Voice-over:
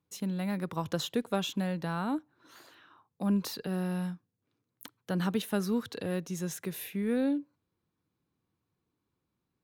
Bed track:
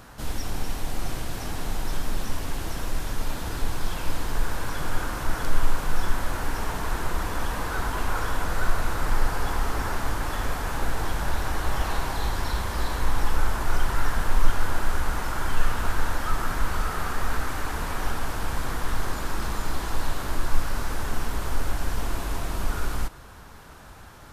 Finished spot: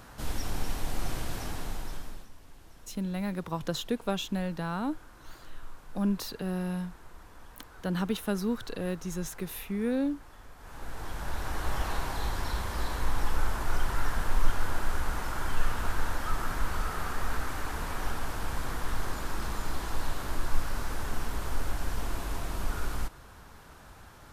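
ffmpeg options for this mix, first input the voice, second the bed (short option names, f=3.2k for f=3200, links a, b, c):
-filter_complex "[0:a]adelay=2750,volume=0dB[a];[1:a]volume=15dB,afade=t=out:st=1.33:d=0.96:silence=0.1,afade=t=in:st=10.56:d=1.13:silence=0.125893[b];[a][b]amix=inputs=2:normalize=0"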